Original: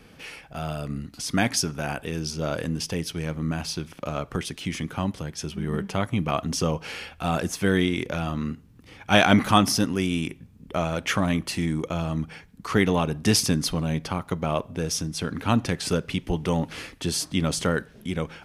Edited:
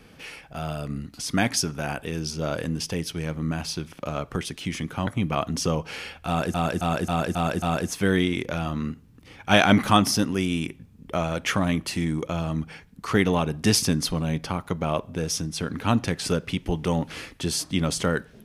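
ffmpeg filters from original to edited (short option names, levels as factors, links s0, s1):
-filter_complex "[0:a]asplit=7[s0][s1][s2][s3][s4][s5][s6];[s0]atrim=end=5.072[s7];[s1]atrim=start=6.028:end=7.502[s8];[s2]atrim=start=7.228:end=7.502[s9];[s3]atrim=start=7.228:end=7.502[s10];[s4]atrim=start=7.228:end=7.502[s11];[s5]atrim=start=7.228:end=7.502[s12];[s6]atrim=start=7.228[s13];[s7][s8]acrossfade=d=0.004:c1=hsin:c2=hsin[s14];[s14][s9]acrossfade=d=0.004:c1=hsin:c2=hsin[s15];[s15][s10]acrossfade=d=0.004:c1=hsin:c2=hsin[s16];[s16][s11]acrossfade=d=0.004:c1=hsin:c2=hsin[s17];[s17][s12]acrossfade=d=0.004:c1=hsin:c2=hsin[s18];[s18][s13]acrossfade=d=0.004:c1=hsin:c2=hsin"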